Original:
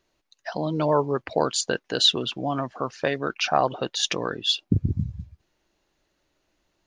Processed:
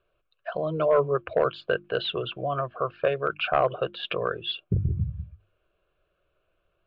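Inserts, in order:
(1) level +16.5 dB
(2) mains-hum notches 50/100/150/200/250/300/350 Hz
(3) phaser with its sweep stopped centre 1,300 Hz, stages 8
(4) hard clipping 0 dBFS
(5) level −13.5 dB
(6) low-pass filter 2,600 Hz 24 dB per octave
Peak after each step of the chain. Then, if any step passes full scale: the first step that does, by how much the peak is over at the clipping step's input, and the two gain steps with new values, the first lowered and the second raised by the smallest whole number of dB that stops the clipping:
+11.0, +11.0, +7.5, 0.0, −13.5, −12.5 dBFS
step 1, 7.5 dB
step 1 +8.5 dB, step 5 −5.5 dB

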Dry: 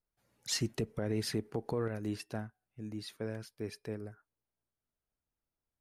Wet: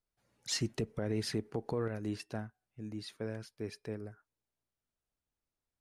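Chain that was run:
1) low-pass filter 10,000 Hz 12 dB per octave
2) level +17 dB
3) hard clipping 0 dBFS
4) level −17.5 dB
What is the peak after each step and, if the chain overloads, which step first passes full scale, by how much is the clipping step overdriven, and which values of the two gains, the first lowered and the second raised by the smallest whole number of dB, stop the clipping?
−21.5, −4.5, −4.5, −22.0 dBFS
no step passes full scale

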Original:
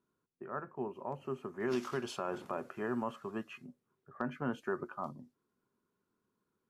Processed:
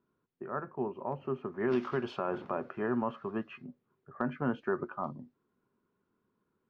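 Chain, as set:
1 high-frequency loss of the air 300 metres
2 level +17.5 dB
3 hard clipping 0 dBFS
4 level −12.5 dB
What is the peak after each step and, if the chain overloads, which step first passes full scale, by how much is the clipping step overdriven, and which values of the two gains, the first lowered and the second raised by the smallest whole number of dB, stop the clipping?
−22.0, −4.5, −4.5, −17.0 dBFS
no step passes full scale

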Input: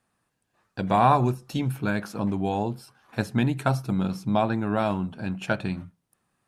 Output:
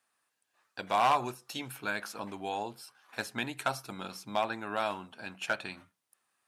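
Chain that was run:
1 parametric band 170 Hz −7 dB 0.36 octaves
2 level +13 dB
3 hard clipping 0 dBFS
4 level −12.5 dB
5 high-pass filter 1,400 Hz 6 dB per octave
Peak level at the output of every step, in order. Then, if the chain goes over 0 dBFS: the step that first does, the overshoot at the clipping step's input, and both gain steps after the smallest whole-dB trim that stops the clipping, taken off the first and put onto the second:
−7.0, +6.0, 0.0, −12.5, −12.5 dBFS
step 2, 6.0 dB
step 2 +7 dB, step 4 −6.5 dB

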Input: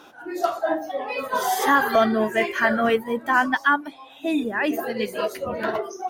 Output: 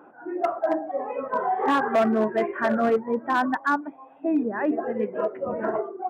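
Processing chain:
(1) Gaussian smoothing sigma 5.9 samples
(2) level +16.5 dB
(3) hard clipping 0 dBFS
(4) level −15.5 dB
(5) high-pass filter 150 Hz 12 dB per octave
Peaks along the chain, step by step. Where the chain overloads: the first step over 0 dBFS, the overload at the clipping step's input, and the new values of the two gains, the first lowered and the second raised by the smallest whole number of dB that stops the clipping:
−9.0, +7.5, 0.0, −15.5, −11.5 dBFS
step 2, 7.5 dB
step 2 +8.5 dB, step 4 −7.5 dB

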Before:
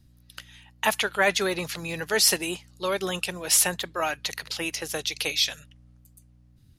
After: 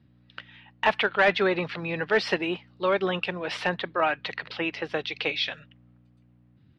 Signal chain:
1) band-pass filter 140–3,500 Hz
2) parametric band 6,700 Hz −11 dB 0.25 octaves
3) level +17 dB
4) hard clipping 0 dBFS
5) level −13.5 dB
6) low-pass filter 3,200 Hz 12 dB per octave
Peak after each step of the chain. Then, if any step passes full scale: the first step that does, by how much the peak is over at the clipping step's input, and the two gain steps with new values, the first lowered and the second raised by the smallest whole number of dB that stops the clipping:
−9.5, −9.5, +7.5, 0.0, −13.5, −13.0 dBFS
step 3, 7.5 dB
step 3 +9 dB, step 5 −5.5 dB

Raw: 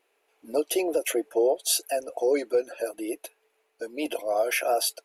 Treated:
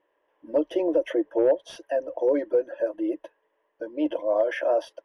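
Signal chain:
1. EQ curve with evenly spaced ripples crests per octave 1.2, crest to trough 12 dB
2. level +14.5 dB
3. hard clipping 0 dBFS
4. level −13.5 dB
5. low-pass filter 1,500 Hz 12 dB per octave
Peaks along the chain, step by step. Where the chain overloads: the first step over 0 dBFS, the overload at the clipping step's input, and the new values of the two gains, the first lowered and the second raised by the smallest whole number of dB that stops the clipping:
−9.0, +5.5, 0.0, −13.5, −13.0 dBFS
step 2, 5.5 dB
step 2 +8.5 dB, step 4 −7.5 dB

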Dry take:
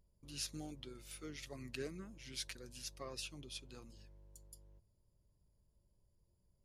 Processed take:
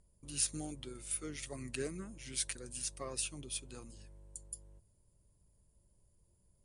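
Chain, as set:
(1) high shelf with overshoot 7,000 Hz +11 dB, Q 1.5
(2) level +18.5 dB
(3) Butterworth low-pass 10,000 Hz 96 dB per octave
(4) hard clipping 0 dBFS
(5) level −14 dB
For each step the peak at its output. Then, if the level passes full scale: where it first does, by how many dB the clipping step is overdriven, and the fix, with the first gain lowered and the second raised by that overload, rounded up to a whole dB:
−21.5, −3.0, −3.0, −3.0, −17.0 dBFS
no step passes full scale

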